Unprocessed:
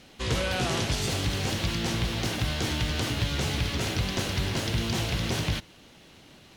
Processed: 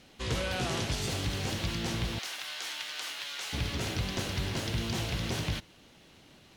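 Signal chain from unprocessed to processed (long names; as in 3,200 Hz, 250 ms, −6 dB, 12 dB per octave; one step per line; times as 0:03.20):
0:02.19–0:03.53: high-pass filter 1,100 Hz 12 dB per octave
level −4.5 dB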